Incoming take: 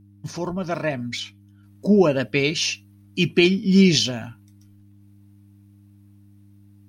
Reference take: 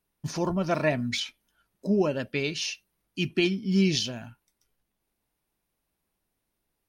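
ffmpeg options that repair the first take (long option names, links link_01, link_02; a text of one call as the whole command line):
ffmpeg -i in.wav -af "bandreject=frequency=100.7:width_type=h:width=4,bandreject=frequency=201.4:width_type=h:width=4,bandreject=frequency=302.1:width_type=h:width=4,asetnsamples=nb_out_samples=441:pad=0,asendcmd='1.63 volume volume -8dB',volume=0dB" out.wav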